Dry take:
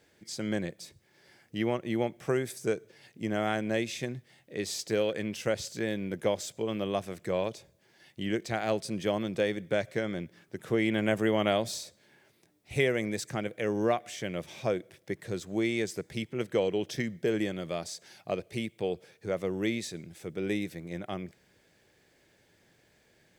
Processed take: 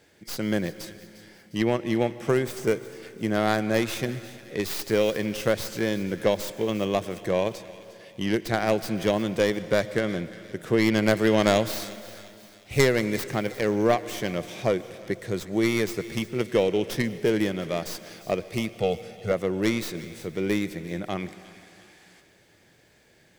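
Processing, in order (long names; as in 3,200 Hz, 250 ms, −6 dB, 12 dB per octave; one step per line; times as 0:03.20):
stylus tracing distortion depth 0.21 ms
0:18.74–0:19.32: comb filter 1.5 ms, depth 97%
0:21.16–0:22.20: gain on a spectral selection 680–12,000 Hz +7 dB
delay with a high-pass on its return 353 ms, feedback 49%, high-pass 1,800 Hz, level −15.5 dB
on a send at −15 dB: convolution reverb RT60 2.5 s, pre-delay 108 ms
on the sum: level +5.5 dB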